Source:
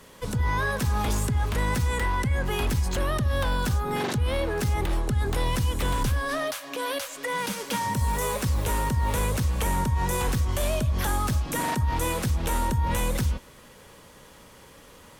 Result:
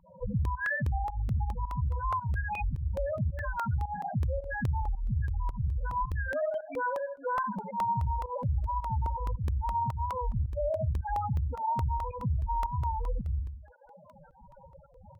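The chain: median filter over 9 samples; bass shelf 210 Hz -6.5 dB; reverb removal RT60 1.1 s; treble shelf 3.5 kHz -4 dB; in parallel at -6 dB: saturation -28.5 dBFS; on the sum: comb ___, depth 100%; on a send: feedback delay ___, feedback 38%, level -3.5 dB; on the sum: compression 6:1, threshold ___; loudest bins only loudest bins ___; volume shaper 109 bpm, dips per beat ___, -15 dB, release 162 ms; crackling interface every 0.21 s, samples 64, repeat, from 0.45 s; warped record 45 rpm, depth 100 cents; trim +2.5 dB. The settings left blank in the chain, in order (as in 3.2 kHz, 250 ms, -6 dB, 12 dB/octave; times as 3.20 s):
1.3 ms, 75 ms, -28 dBFS, 4, 1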